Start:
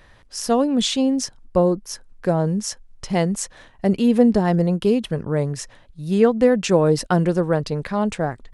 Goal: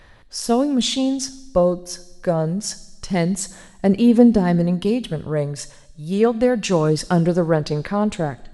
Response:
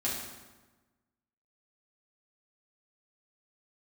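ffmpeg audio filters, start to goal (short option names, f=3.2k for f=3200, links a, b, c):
-filter_complex "[0:a]aphaser=in_gain=1:out_gain=1:delay=1.9:decay=0.28:speed=0.26:type=sinusoidal,asplit=2[a][b];[b]equalizer=f=125:t=o:w=1:g=-10,equalizer=f=250:t=o:w=1:g=-4,equalizer=f=500:t=o:w=1:g=-7,equalizer=f=1k:t=o:w=1:g=-7,equalizer=f=2k:t=o:w=1:g=-3,equalizer=f=4k:t=o:w=1:g=7,equalizer=f=8k:t=o:w=1:g=3[c];[1:a]atrim=start_sample=2205[d];[c][d]afir=irnorm=-1:irlink=0,volume=-18dB[e];[a][e]amix=inputs=2:normalize=0,volume=-1dB"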